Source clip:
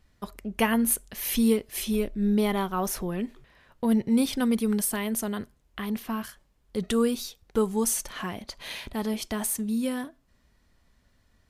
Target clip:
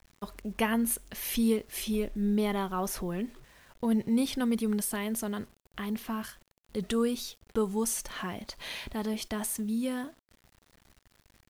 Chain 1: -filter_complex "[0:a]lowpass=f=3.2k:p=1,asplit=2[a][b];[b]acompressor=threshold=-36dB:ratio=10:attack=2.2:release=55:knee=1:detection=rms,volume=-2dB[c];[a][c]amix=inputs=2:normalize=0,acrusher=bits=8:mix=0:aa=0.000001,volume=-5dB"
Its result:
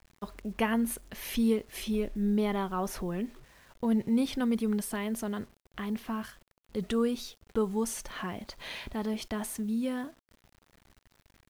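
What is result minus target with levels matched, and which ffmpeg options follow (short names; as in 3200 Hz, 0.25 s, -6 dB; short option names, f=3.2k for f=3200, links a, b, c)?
8000 Hz band -5.0 dB
-filter_complex "[0:a]lowpass=f=11k:p=1,asplit=2[a][b];[b]acompressor=threshold=-36dB:ratio=10:attack=2.2:release=55:knee=1:detection=rms,volume=-2dB[c];[a][c]amix=inputs=2:normalize=0,acrusher=bits=8:mix=0:aa=0.000001,volume=-5dB"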